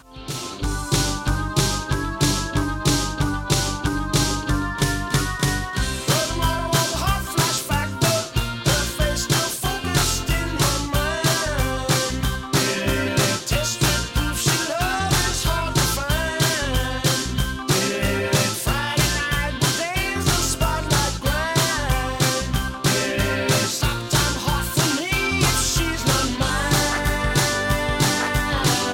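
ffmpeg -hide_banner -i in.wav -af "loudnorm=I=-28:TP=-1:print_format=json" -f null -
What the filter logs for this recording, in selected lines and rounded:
"input_i" : "-21.0",
"input_tp" : "-7.0",
"input_lra" : "1.8",
"input_thresh" : "-31.0",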